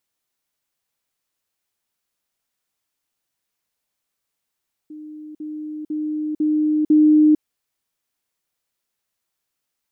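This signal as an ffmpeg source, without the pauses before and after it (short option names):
-f lavfi -i "aevalsrc='pow(10,(-33.5+6*floor(t/0.5))/20)*sin(2*PI*305*t)*clip(min(mod(t,0.5),0.45-mod(t,0.5))/0.005,0,1)':d=2.5:s=44100"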